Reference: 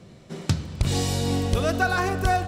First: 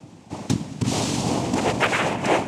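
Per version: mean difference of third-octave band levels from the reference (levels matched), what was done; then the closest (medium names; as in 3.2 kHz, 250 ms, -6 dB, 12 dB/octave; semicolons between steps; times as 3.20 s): 4.5 dB: noise-vocoded speech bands 4; overload inside the chain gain 13 dB; trim +2.5 dB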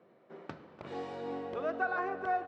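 10.0 dB: Butterworth band-pass 770 Hz, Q 0.57; delay 294 ms -17 dB; trim -8.5 dB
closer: first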